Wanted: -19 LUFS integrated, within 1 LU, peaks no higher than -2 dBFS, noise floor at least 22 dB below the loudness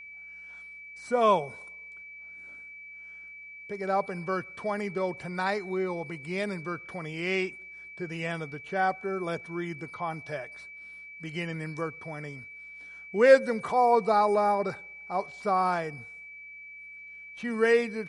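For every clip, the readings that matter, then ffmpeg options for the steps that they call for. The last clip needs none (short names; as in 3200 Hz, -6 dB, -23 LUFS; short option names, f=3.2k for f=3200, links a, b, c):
steady tone 2300 Hz; tone level -43 dBFS; loudness -28.5 LUFS; peak -6.5 dBFS; loudness target -19.0 LUFS
-> -af "bandreject=f=2.3k:w=30"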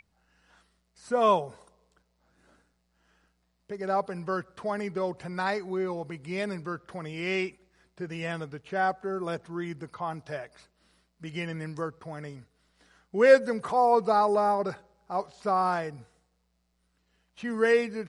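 steady tone none; loudness -28.5 LUFS; peak -7.0 dBFS; loudness target -19.0 LUFS
-> -af "volume=9.5dB,alimiter=limit=-2dB:level=0:latency=1"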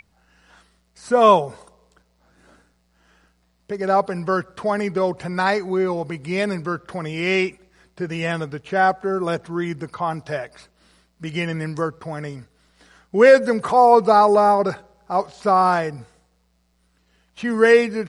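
loudness -19.5 LUFS; peak -2.0 dBFS; noise floor -64 dBFS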